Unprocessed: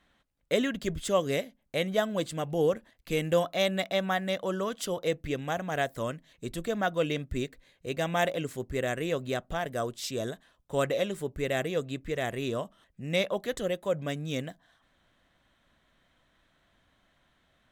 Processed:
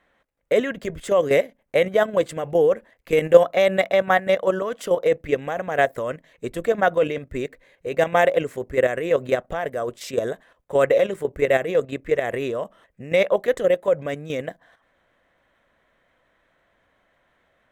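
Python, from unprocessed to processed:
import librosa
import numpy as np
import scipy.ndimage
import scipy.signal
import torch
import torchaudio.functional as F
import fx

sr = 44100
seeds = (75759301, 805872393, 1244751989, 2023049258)

y = fx.graphic_eq(x, sr, hz=(500, 1000, 2000, 4000), db=(11, 4, 8, -4))
y = fx.level_steps(y, sr, step_db=10)
y = y * librosa.db_to_amplitude(4.5)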